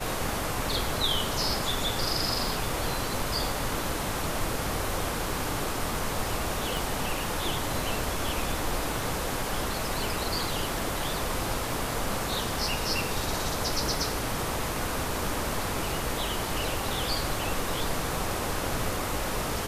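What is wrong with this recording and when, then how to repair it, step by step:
6.77 pop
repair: de-click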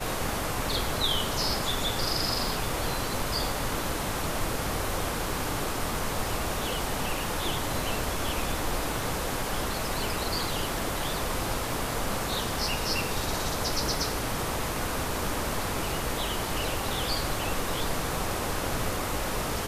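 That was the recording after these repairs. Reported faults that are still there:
none

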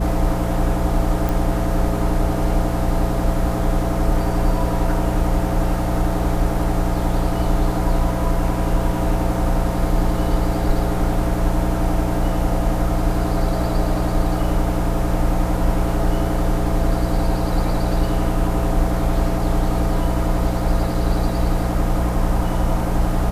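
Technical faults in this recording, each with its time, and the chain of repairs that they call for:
hum 60 Hz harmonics 3 -23 dBFS
1.29 pop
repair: de-click; de-hum 60 Hz, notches 3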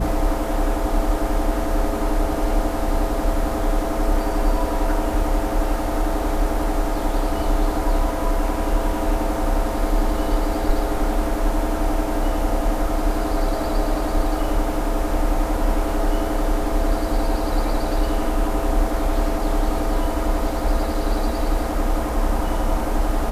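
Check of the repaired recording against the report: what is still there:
none

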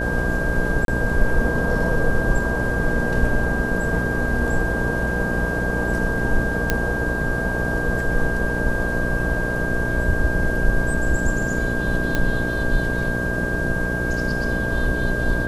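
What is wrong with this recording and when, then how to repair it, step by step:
buzz 60 Hz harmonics 11 -26 dBFS
tone 1600 Hz -25 dBFS
0.85–0.88 gap 32 ms
6.7 pop -4 dBFS
12.15 pop -8 dBFS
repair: de-click; de-hum 60 Hz, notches 11; notch 1600 Hz, Q 30; interpolate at 0.85, 32 ms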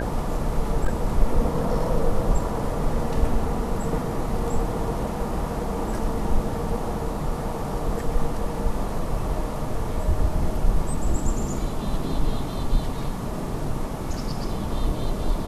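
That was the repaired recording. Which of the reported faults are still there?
6.7 pop

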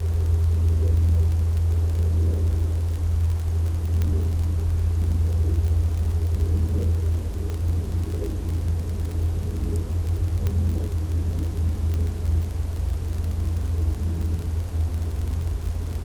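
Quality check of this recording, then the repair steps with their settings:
crackle 30/s -27 dBFS
4.02 pop -13 dBFS
7.5 pop -19 dBFS
10.47 pop -13 dBFS
11.94 pop -17 dBFS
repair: de-click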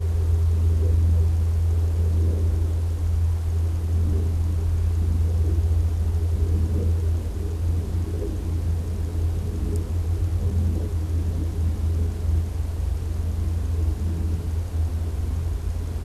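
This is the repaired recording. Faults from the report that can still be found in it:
10.47 pop

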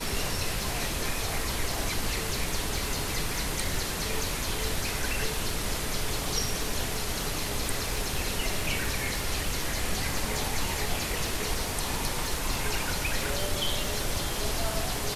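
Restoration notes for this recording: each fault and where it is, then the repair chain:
crackle 52/s -33 dBFS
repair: de-click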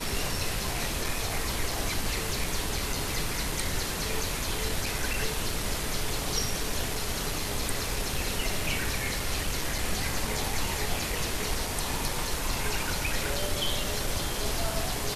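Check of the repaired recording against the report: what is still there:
none

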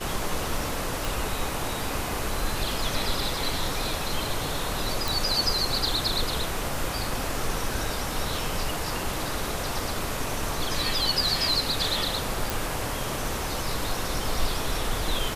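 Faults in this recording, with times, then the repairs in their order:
1.05 pop
5.08 pop
12.5 pop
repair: de-click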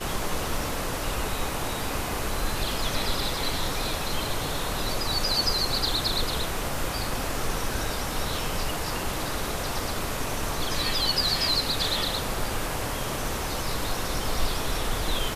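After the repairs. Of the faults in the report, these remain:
none

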